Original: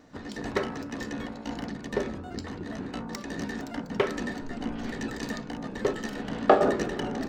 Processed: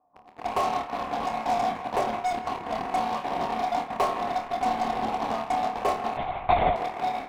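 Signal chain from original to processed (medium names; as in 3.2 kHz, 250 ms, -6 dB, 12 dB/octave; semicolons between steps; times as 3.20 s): level rider gain up to 10.5 dB; cascade formant filter a; in parallel at -11 dB: fuzz box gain 39 dB, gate -47 dBFS; on the sum: flutter echo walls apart 4.6 m, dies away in 0.25 s; 6.17–6.76 s: LPC vocoder at 8 kHz whisper; band-passed feedback delay 163 ms, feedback 74%, band-pass 1.4 kHz, level -11 dB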